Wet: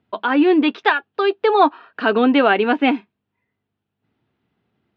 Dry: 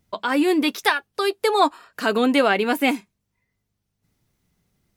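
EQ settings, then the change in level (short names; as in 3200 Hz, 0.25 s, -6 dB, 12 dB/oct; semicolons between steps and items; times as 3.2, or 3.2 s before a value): air absorption 58 m; speaker cabinet 160–3100 Hz, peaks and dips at 170 Hz -9 dB, 550 Hz -5 dB, 1100 Hz -3 dB, 2100 Hz -7 dB; +6.0 dB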